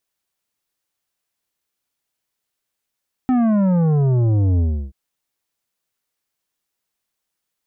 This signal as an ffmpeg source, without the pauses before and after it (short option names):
-f lavfi -i "aevalsrc='0.188*clip((1.63-t)/0.33,0,1)*tanh(3.16*sin(2*PI*260*1.63/log(65/260)*(exp(log(65/260)*t/1.63)-1)))/tanh(3.16)':d=1.63:s=44100"